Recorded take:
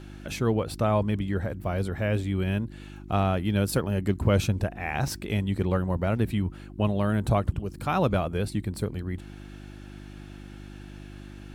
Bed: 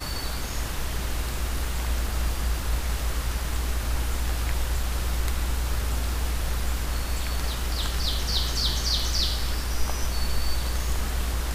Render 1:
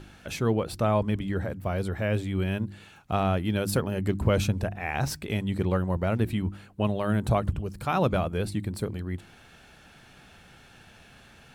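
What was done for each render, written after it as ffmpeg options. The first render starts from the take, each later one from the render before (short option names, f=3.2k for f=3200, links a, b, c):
-af "bandreject=f=50:t=h:w=4,bandreject=f=100:t=h:w=4,bandreject=f=150:t=h:w=4,bandreject=f=200:t=h:w=4,bandreject=f=250:t=h:w=4,bandreject=f=300:t=h:w=4,bandreject=f=350:t=h:w=4"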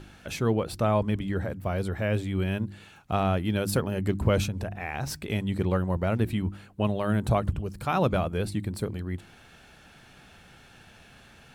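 -filter_complex "[0:a]asettb=1/sr,asplit=3[a][b][c];[a]atrim=end=4.454[d];[b]atrim=start=4.45:end=5.15,asetpts=PTS-STARTPTS,afade=t=in:d=0.004:c=qsin,afade=t=out:st=0.696:d=0.004:c=qsin,acompressor=threshold=-29dB:ratio=2.5:attack=3.2:release=140:knee=1:detection=peak[e];[c]atrim=start=5.146[f];[d][e]acrossfade=d=0.004:c1=hsin:c2=qsin[g];[g][f]acrossfade=d=0.004:c1=qsin:c2=hsin"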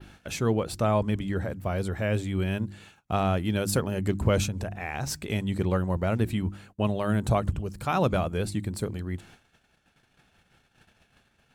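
-af "adynamicequalizer=threshold=0.00158:dfrequency=7100:dqfactor=1.7:tfrequency=7100:tqfactor=1.7:attack=5:release=100:ratio=0.375:range=3:mode=boostabove:tftype=bell,agate=range=-18dB:threshold=-50dB:ratio=16:detection=peak"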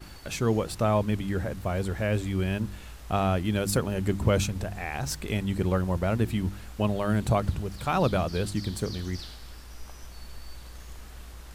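-filter_complex "[1:a]volume=-17dB[a];[0:a][a]amix=inputs=2:normalize=0"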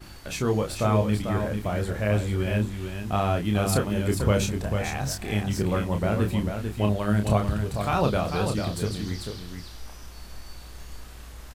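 -filter_complex "[0:a]asplit=2[a][b];[b]adelay=29,volume=-5dB[c];[a][c]amix=inputs=2:normalize=0,asplit=2[d][e];[e]aecho=0:1:444:0.473[f];[d][f]amix=inputs=2:normalize=0"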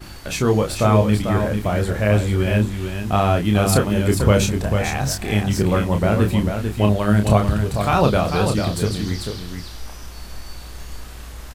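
-af "volume=7dB"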